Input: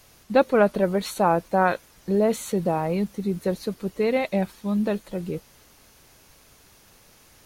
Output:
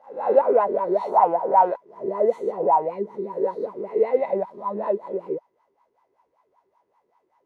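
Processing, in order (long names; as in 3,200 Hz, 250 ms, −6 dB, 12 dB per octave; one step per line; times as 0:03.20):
peak hold with a rise ahead of every peak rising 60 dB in 0.60 s
leveller curve on the samples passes 2
LFO wah 5.2 Hz 370–1,000 Hz, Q 8.7
hollow resonant body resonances 980/2,000 Hz, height 13 dB, ringing for 40 ms
level +3 dB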